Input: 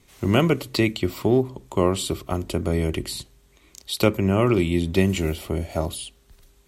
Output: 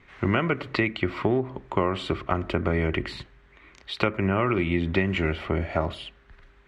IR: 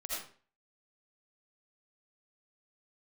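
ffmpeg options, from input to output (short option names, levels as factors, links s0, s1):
-filter_complex "[0:a]equalizer=f=1700:t=o:w=1.4:g=13,asplit=2[s0][s1];[1:a]atrim=start_sample=2205,lowpass=1200[s2];[s1][s2]afir=irnorm=-1:irlink=0,volume=0.0708[s3];[s0][s3]amix=inputs=2:normalize=0,acompressor=threshold=0.112:ratio=6,lowpass=2500"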